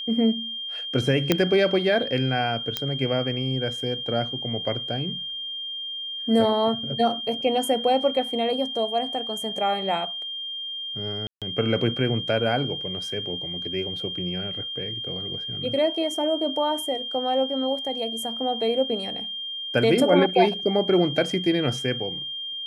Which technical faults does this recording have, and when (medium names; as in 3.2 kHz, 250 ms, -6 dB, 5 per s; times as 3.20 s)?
whine 3.2 kHz -30 dBFS
1.32 s: pop -4 dBFS
2.77 s: pop -9 dBFS
11.27–11.42 s: dropout 147 ms